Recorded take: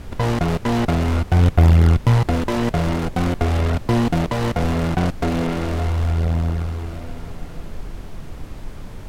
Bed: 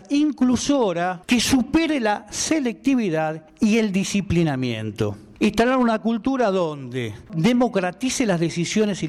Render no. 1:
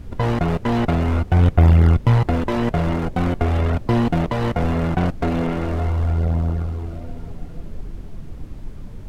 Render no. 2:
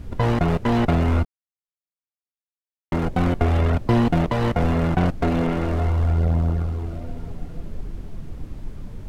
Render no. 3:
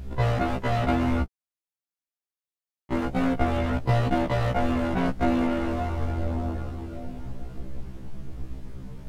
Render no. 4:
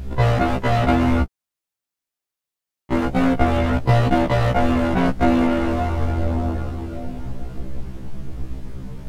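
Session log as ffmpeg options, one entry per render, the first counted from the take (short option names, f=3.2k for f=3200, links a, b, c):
-af "afftdn=nr=9:nf=-35"
-filter_complex "[0:a]asplit=3[a][b][c];[a]atrim=end=1.25,asetpts=PTS-STARTPTS,afade=t=out:st=1.246:d=0.004:c=hsin[d];[b]atrim=start=1.25:end=2.92,asetpts=PTS-STARTPTS,volume=0[e];[c]atrim=start=2.92,asetpts=PTS-STARTPTS,afade=t=in:d=0.004:c=hsin[f];[d][e][f]concat=n=3:v=0:a=1"
-af "afftfilt=real='re*1.73*eq(mod(b,3),0)':imag='im*1.73*eq(mod(b,3),0)':win_size=2048:overlap=0.75"
-af "volume=6.5dB"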